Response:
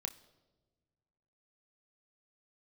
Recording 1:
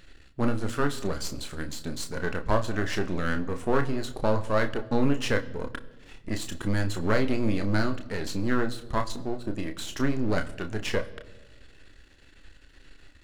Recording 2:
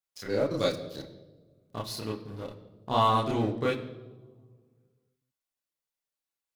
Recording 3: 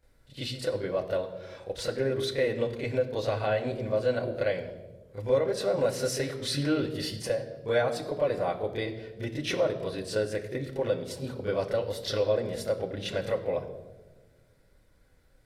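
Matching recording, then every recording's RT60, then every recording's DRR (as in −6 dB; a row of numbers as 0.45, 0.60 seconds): 1; non-exponential decay, non-exponential decay, non-exponential decay; 6.0, −3.0, −9.5 decibels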